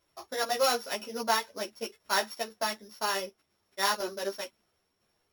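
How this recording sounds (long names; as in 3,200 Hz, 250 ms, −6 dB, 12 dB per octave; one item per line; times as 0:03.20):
a buzz of ramps at a fixed pitch in blocks of 8 samples
tremolo saw down 2 Hz, depth 50%
a shimmering, thickened sound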